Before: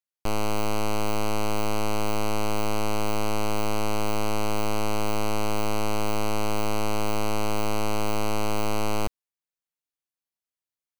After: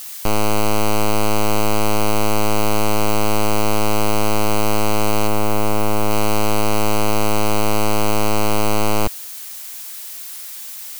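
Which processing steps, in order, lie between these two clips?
5.27–6.11 high shelf 3400 Hz -9 dB; added noise blue -41 dBFS; gain +8.5 dB

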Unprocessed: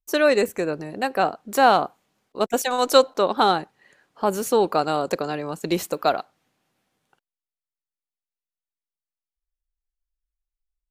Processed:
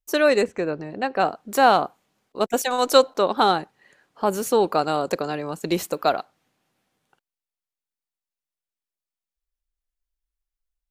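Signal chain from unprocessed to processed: 0.43–1.2 air absorption 120 m

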